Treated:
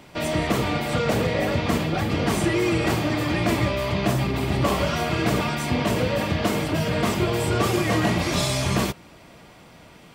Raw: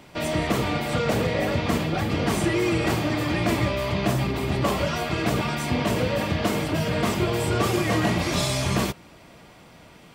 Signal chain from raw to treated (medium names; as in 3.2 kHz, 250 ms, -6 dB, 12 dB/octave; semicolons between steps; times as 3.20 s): 4.27–5.49 s: flutter echo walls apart 11 m, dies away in 0.46 s; trim +1 dB